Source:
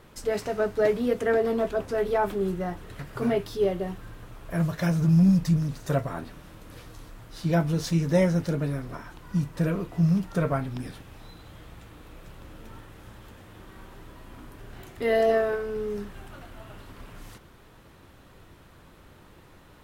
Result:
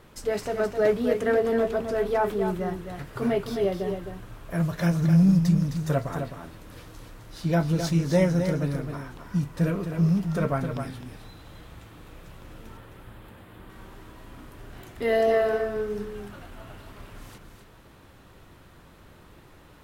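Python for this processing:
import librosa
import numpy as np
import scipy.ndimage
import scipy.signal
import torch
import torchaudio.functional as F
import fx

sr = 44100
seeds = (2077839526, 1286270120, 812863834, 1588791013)

p1 = fx.peak_eq(x, sr, hz=6000.0, db=-12.0, octaves=0.71, at=(12.77, 13.7))
y = p1 + fx.echo_single(p1, sr, ms=261, db=-7.5, dry=0)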